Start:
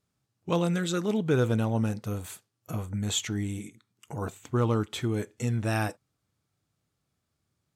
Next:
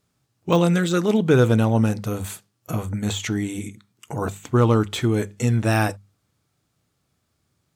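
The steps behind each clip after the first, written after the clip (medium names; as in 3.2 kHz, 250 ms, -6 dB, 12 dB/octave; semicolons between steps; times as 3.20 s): de-esser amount 75%; hum notches 50/100/150/200 Hz; trim +8.5 dB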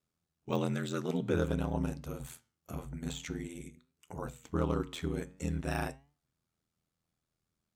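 ring modulator 41 Hz; flange 0.49 Hz, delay 6.7 ms, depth 5.3 ms, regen +88%; trim -7 dB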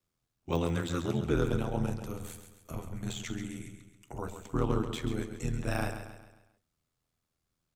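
frequency shift -45 Hz; on a send: feedback delay 135 ms, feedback 45%, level -9 dB; on the sum: trim +2 dB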